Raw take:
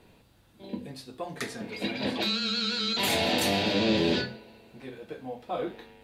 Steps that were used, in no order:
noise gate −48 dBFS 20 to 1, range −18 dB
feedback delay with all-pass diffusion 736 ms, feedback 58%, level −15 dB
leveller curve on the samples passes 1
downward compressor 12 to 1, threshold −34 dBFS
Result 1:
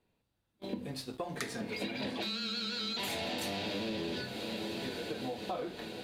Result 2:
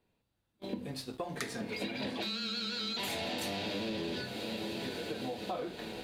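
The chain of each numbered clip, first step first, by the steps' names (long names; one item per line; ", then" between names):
noise gate, then leveller curve on the samples, then feedback delay with all-pass diffusion, then downward compressor
feedback delay with all-pass diffusion, then noise gate, then leveller curve on the samples, then downward compressor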